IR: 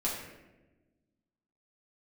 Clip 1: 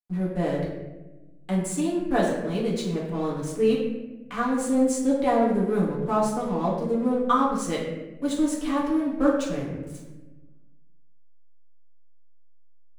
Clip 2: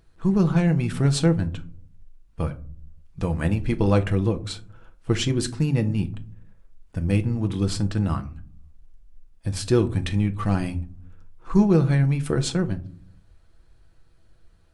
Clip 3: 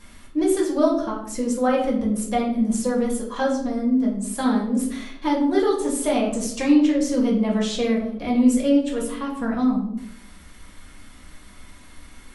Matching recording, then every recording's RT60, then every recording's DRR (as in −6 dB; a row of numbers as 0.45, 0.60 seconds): 1; 1.1 s, non-exponential decay, 0.70 s; −6.0, 6.0, −3.5 decibels